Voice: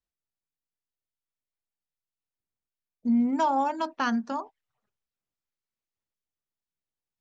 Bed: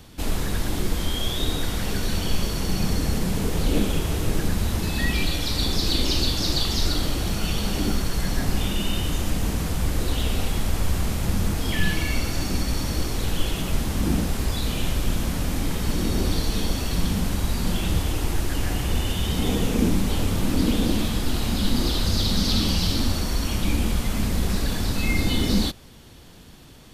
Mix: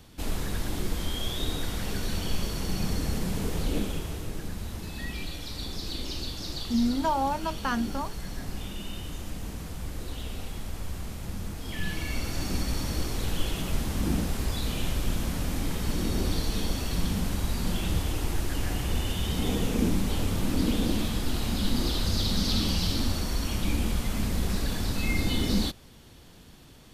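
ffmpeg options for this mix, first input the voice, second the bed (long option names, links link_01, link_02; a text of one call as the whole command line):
ffmpeg -i stem1.wav -i stem2.wav -filter_complex "[0:a]adelay=3650,volume=-2dB[link_01];[1:a]volume=2dB,afade=type=out:start_time=3.51:duration=0.81:silence=0.473151,afade=type=in:start_time=11.6:duration=0.93:silence=0.421697[link_02];[link_01][link_02]amix=inputs=2:normalize=0" out.wav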